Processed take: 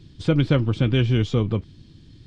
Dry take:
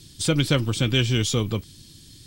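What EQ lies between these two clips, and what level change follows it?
head-to-tape spacing loss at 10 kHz 34 dB
+3.5 dB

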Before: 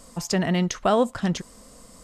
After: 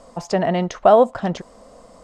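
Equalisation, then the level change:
high-frequency loss of the air 66 metres
parametric band 670 Hz +13 dB 1.5 octaves
−2.0 dB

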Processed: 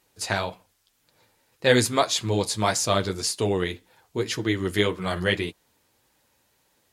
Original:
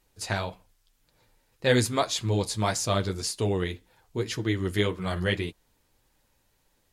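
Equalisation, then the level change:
high-pass filter 65 Hz
low-shelf EQ 170 Hz −7 dB
+4.5 dB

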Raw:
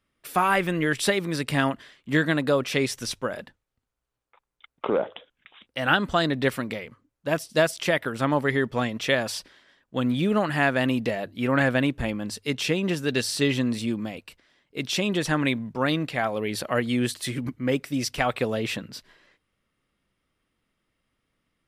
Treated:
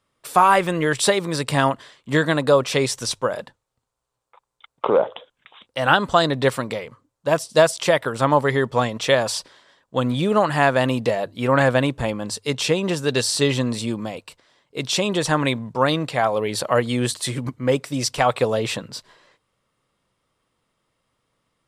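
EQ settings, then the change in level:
graphic EQ with 10 bands 125 Hz +8 dB, 500 Hz +8 dB, 1,000 Hz +11 dB, 4,000 Hz +6 dB, 8,000 Hz +11 dB
−3.0 dB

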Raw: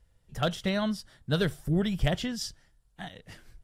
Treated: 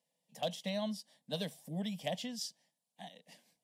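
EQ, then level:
high-pass filter 190 Hz 24 dB per octave
parametric band 290 Hz −4.5 dB 1.2 octaves
phaser with its sweep stopped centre 370 Hz, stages 6
−4.5 dB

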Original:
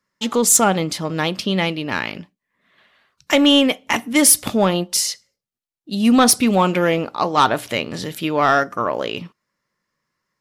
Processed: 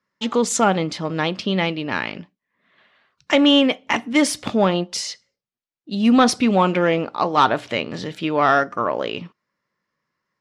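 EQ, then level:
high-frequency loss of the air 110 metres
low-shelf EQ 64 Hz −10.5 dB
0.0 dB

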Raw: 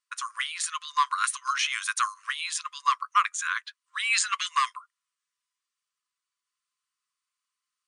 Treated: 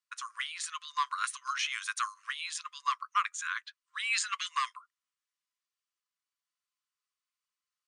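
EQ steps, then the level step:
high-pass filter 910 Hz
low-pass filter 8,400 Hz 12 dB per octave
−5.5 dB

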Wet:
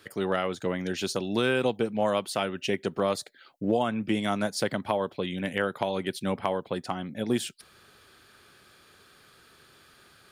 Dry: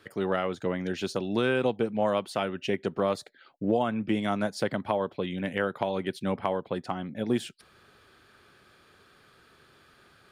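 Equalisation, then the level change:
high-shelf EQ 4,100 Hz +10 dB
0.0 dB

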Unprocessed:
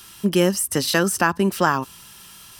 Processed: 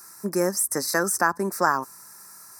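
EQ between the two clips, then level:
high-pass filter 570 Hz 6 dB per octave
Butterworth band-reject 3,100 Hz, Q 0.87
0.0 dB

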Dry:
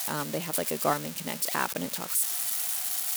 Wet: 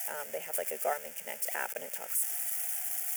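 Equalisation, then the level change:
high-pass filter 280 Hz 24 dB per octave
phaser with its sweep stopped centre 1,100 Hz, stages 6
−3.0 dB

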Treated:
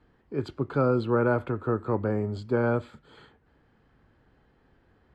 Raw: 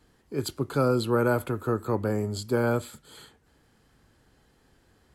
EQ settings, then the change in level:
low-pass filter 2,300 Hz 12 dB per octave
0.0 dB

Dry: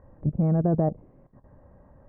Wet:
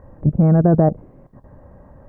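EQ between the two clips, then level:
dynamic equaliser 1,500 Hz, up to +6 dB, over −54 dBFS, Q 3
+9.0 dB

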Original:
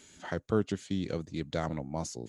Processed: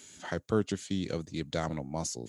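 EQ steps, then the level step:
high-pass filter 59 Hz
high-shelf EQ 4,000 Hz +7.5 dB
0.0 dB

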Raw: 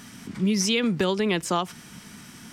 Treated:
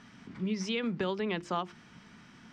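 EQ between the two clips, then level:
high-frequency loss of the air 150 metres
parametric band 1,200 Hz +2.5 dB 2 octaves
mains-hum notches 50/100/150/200/250/300/350 Hz
−8.5 dB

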